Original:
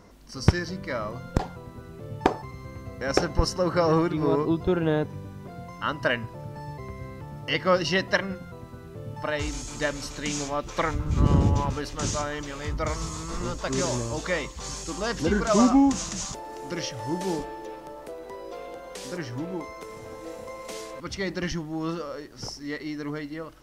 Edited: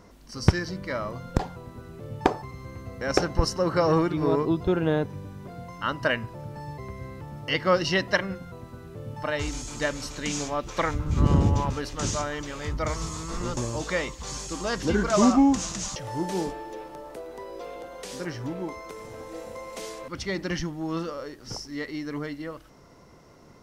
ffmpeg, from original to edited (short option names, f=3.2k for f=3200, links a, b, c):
-filter_complex "[0:a]asplit=3[a][b][c];[a]atrim=end=13.572[d];[b]atrim=start=13.938:end=16.332[e];[c]atrim=start=16.878[f];[d][e]acrossfade=d=0.004:c1=hsin:c2=hsin[g];[g][f]acrossfade=d=0.004:c1=hsin:c2=hsin"